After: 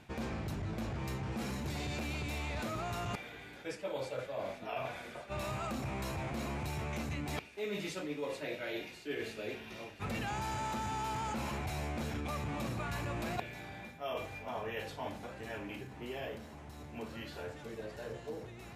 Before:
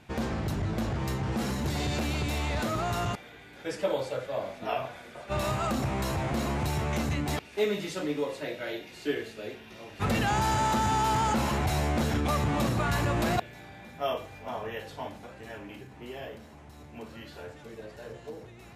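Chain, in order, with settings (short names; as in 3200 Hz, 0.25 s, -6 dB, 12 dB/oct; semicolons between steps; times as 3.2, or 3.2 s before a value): dynamic EQ 2400 Hz, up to +7 dB, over -58 dBFS, Q 7.3; reverse; compressor 6:1, threshold -36 dBFS, peak gain reduction 13.5 dB; reverse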